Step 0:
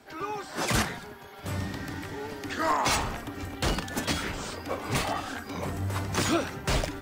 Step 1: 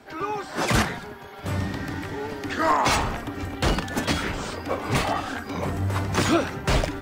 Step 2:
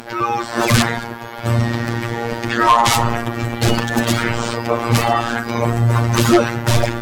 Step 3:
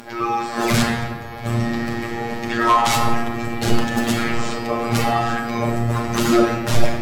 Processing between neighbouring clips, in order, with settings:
treble shelf 4.4 kHz -6.5 dB; trim +5.5 dB
robot voice 117 Hz; sine folder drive 10 dB, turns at -1.5 dBFS; upward compressor, threshold -30 dBFS; trim -1 dB
simulated room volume 690 m³, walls mixed, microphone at 1.3 m; trim -6 dB

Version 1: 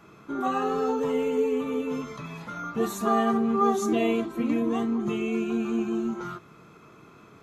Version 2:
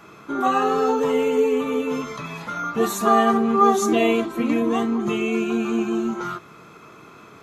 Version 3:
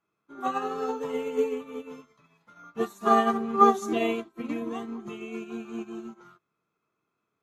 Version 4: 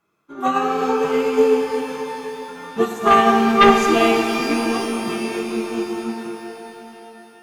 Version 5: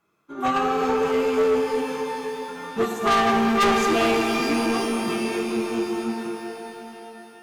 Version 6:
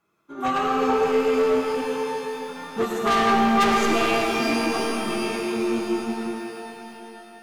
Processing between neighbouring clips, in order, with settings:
bass shelf 330 Hz -7 dB; trim +8.5 dB
upward expansion 2.5:1, over -36 dBFS
sine folder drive 7 dB, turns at -5.5 dBFS; pitch-shifted reverb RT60 3.6 s, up +12 st, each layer -8 dB, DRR 3.5 dB; trim -1 dB
saturation -16 dBFS, distortion -9 dB
reverberation RT60 0.80 s, pre-delay 65 ms, DRR 3.5 dB; trim -1.5 dB

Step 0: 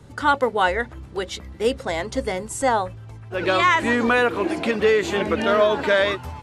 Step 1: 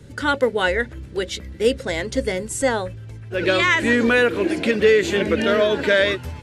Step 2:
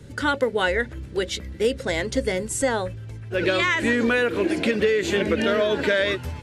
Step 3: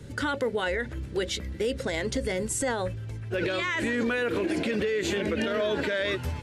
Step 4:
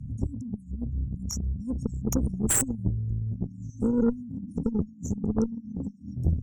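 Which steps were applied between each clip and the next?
high-order bell 930 Hz -9.5 dB 1.1 oct; trim +3 dB
compression, threshold -17 dBFS, peak gain reduction 7 dB
peak limiter -19.5 dBFS, peak gain reduction 10.5 dB
resonances exaggerated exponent 2; brick-wall FIR band-stop 270–5400 Hz; Chebyshev shaper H 6 -8 dB, 8 -13 dB, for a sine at -20 dBFS; trim +6.5 dB

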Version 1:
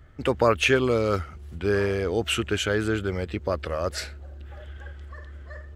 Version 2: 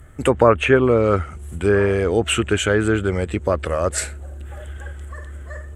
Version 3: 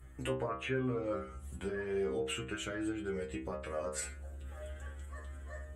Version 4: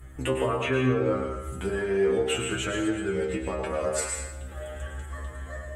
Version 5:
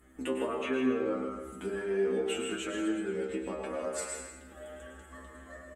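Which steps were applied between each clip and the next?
low-pass that closes with the level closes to 1.9 kHz, closed at -17.5 dBFS; resonant high shelf 6.5 kHz +10.5 dB, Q 3; trim +7 dB
compression 2.5:1, threshold -28 dBFS, peak gain reduction 13.5 dB; inharmonic resonator 63 Hz, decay 0.54 s, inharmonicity 0.002
plate-style reverb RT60 0.83 s, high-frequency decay 0.85×, pre-delay 90 ms, DRR 2.5 dB; trim +8.5 dB
resonant low shelf 170 Hz -10 dB, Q 3; echo from a far wall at 27 m, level -8 dB; trim -8 dB

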